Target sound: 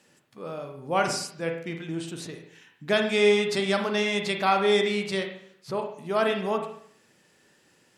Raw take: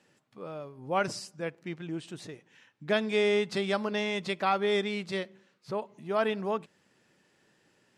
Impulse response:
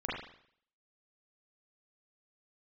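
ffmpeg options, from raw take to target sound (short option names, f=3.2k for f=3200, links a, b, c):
-filter_complex "[0:a]aemphasis=mode=production:type=cd,asplit=2[a][b];[1:a]atrim=start_sample=2205[c];[b][c]afir=irnorm=-1:irlink=0,volume=-5.5dB[d];[a][d]amix=inputs=2:normalize=0"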